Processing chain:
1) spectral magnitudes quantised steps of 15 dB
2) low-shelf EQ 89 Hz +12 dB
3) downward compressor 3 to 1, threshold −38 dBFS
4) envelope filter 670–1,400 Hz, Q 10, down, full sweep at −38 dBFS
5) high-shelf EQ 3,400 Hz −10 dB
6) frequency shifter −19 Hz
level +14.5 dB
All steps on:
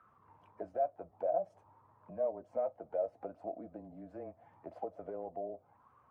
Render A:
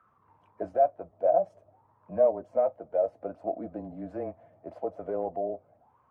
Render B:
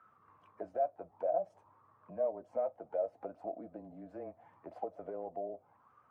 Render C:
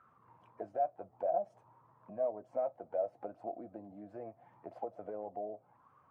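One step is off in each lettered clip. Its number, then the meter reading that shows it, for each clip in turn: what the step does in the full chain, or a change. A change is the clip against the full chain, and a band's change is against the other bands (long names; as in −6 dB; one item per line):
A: 3, average gain reduction 6.0 dB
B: 2, 125 Hz band −2.0 dB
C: 6, 1 kHz band +2.5 dB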